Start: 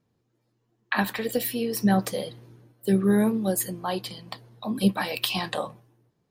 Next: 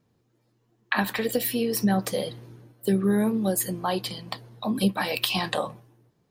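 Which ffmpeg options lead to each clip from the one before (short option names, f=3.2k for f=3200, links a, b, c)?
-af "acompressor=threshold=-27dB:ratio=2,volume=4dB"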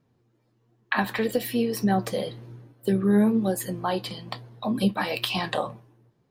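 -af "highshelf=f=4.8k:g=-8.5,flanger=delay=7.1:depth=2.8:regen=69:speed=1.1:shape=triangular,volume=5dB"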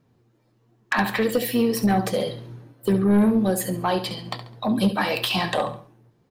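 -af "aecho=1:1:69|138|207:0.251|0.0829|0.0274,aeval=exprs='0.422*(cos(1*acos(clip(val(0)/0.422,-1,1)))-cos(1*PI/2))+0.0841*(cos(5*acos(clip(val(0)/0.422,-1,1)))-cos(5*PI/2))':c=same,volume=-1.5dB"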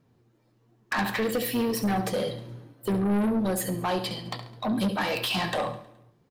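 -af "asoftclip=type=tanh:threshold=-20dB,aecho=1:1:105|210|315|420:0.106|0.053|0.0265|0.0132,volume=-1.5dB"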